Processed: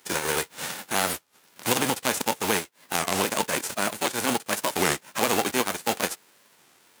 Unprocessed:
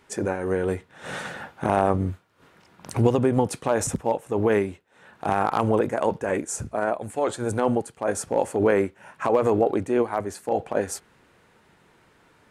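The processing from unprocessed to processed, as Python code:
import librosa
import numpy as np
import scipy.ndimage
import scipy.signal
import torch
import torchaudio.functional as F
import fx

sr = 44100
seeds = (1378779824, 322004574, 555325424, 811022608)

p1 = fx.envelope_flatten(x, sr, power=0.3)
p2 = scipy.signal.sosfilt(scipy.signal.butter(2, 200.0, 'highpass', fs=sr, output='sos'), p1)
p3 = fx.rider(p2, sr, range_db=5, speed_s=0.5)
p4 = p2 + (p3 * librosa.db_to_amplitude(-1.0))
p5 = fx.stretch_grains(p4, sr, factor=0.56, grain_ms=22.0)
p6 = fx.record_warp(p5, sr, rpm=33.33, depth_cents=250.0)
y = p6 * librosa.db_to_amplitude(-6.0)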